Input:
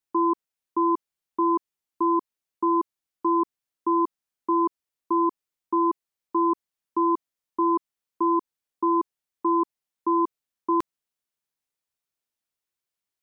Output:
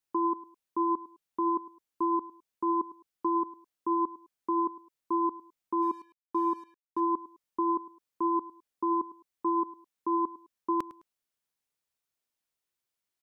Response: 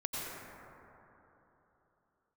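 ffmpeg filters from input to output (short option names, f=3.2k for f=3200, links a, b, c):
-filter_complex "[0:a]alimiter=limit=-21.5dB:level=0:latency=1:release=129,aecho=1:1:105|210:0.133|0.036,asplit=3[a][b][c];[a]afade=t=out:st=5.81:d=0.02[d];[b]aeval=exprs='sgn(val(0))*max(abs(val(0))-0.00106,0)':c=same,afade=t=in:st=5.81:d=0.02,afade=t=out:st=6.99:d=0.02[e];[c]afade=t=in:st=6.99:d=0.02[f];[d][e][f]amix=inputs=3:normalize=0"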